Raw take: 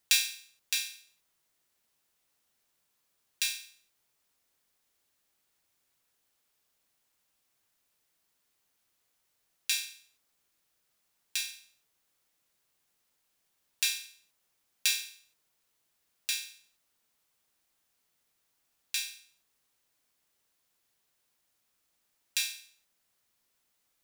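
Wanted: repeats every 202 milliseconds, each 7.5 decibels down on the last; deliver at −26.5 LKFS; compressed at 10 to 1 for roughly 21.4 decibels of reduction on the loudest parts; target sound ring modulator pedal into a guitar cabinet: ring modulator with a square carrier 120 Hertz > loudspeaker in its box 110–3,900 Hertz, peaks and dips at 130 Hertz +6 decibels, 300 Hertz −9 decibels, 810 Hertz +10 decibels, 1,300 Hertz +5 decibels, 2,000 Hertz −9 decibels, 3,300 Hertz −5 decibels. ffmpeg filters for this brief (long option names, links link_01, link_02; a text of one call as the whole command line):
ffmpeg -i in.wav -af "acompressor=threshold=-42dB:ratio=10,aecho=1:1:202|404|606|808|1010:0.422|0.177|0.0744|0.0312|0.0131,aeval=exprs='val(0)*sgn(sin(2*PI*120*n/s))':channel_layout=same,highpass=110,equalizer=frequency=130:width_type=q:width=4:gain=6,equalizer=frequency=300:width_type=q:width=4:gain=-9,equalizer=frequency=810:width_type=q:width=4:gain=10,equalizer=frequency=1300:width_type=q:width=4:gain=5,equalizer=frequency=2000:width_type=q:width=4:gain=-9,equalizer=frequency=3300:width_type=q:width=4:gain=-5,lowpass=frequency=3900:width=0.5412,lowpass=frequency=3900:width=1.3066,volume=29.5dB" out.wav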